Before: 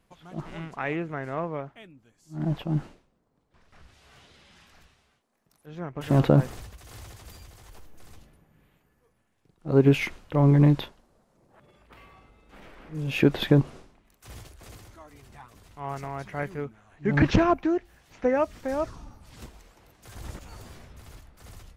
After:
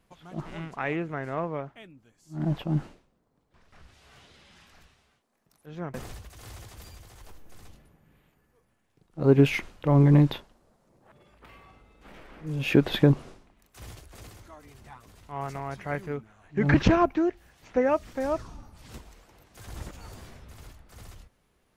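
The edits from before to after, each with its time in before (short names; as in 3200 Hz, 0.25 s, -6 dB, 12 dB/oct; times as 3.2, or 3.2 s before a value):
5.94–6.42 cut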